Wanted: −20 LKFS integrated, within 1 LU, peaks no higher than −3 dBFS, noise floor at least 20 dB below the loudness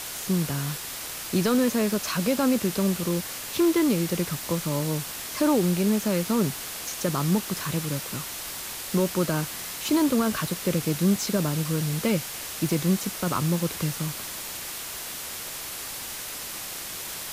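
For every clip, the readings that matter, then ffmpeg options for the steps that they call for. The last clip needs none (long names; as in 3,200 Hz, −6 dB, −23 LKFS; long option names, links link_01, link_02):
background noise floor −36 dBFS; target noise floor −47 dBFS; integrated loudness −26.5 LKFS; sample peak −12.5 dBFS; target loudness −20.0 LKFS
→ -af "afftdn=noise_reduction=11:noise_floor=-36"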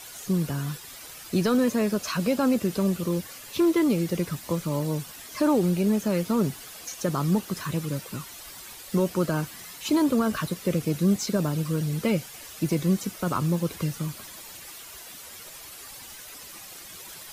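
background noise floor −44 dBFS; target noise floor −47 dBFS
→ -af "afftdn=noise_reduction=6:noise_floor=-44"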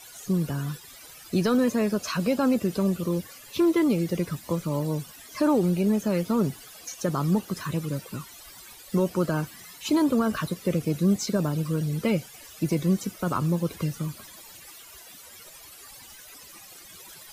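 background noise floor −47 dBFS; integrated loudness −26.5 LKFS; sample peak −13.5 dBFS; target loudness −20.0 LKFS
→ -af "volume=6.5dB"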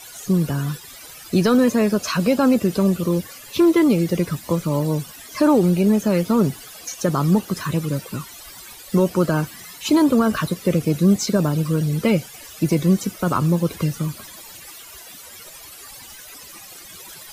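integrated loudness −20.0 LKFS; sample peak −7.0 dBFS; background noise floor −41 dBFS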